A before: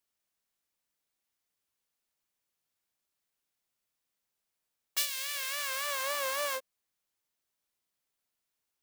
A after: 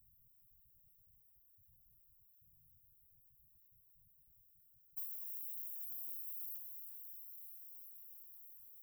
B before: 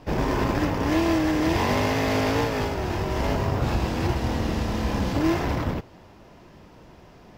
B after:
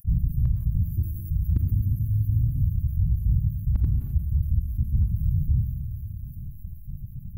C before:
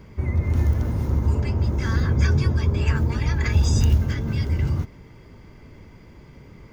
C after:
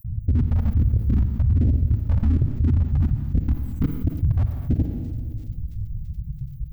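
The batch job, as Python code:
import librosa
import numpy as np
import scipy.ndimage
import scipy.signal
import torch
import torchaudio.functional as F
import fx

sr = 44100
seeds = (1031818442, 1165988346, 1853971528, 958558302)

p1 = fx.spec_dropout(x, sr, seeds[0], share_pct=44)
p2 = scipy.signal.sosfilt(scipy.signal.cheby2(4, 80, [690.0, 3900.0], 'bandstop', fs=sr, output='sos'), p1)
p3 = fx.bass_treble(p2, sr, bass_db=7, treble_db=-4)
p4 = fx.rider(p3, sr, range_db=4, speed_s=0.5)
p5 = p3 + (p4 * 10.0 ** (-1.0 / 20.0))
p6 = 10.0 ** (-8.0 / 20.0) * (np.abs((p5 / 10.0 ** (-8.0 / 20.0) + 3.0) % 4.0 - 2.0) - 1.0)
p7 = fx.phaser_stages(p6, sr, stages=2, low_hz=310.0, high_hz=1200.0, hz=1.3, feedback_pct=5)
p8 = fx.echo_wet_highpass(p7, sr, ms=336, feedback_pct=74, hz=5300.0, wet_db=-13.0)
p9 = fx.rev_schroeder(p8, sr, rt60_s=1.5, comb_ms=38, drr_db=11.0)
p10 = fx.env_flatten(p9, sr, amount_pct=50)
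y = p10 * 10.0 ** (-5.5 / 20.0)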